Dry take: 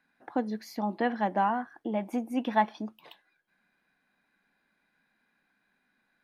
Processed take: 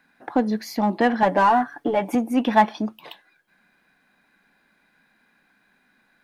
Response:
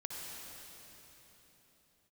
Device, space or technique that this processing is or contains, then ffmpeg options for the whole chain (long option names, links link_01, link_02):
parallel distortion: -filter_complex "[0:a]asplit=2[link_01][link_02];[link_02]asoftclip=type=hard:threshold=-31dB,volume=-7dB[link_03];[link_01][link_03]amix=inputs=2:normalize=0,asettb=1/sr,asplit=3[link_04][link_05][link_06];[link_04]atrim=end=1.224[link_07];[link_05]atrim=start=1.22:end=2.15,asetpts=PTS-STARTPTS,afade=type=in:duration=0.004:curve=qsin,afade=type=out:start_time=0.926:duration=0.004:curve=qsin,aecho=1:1:7:0.86,atrim=end_sample=41013[link_08];[link_06]atrim=start=2.146[link_09];[link_07][link_08]acrossfade=duration=0.004:curve1=hsin:curve2=qsin[link_10];[link_10][link_09]acrossfade=duration=0.004:curve1=qsin:curve2=hsin,volume=7.5dB"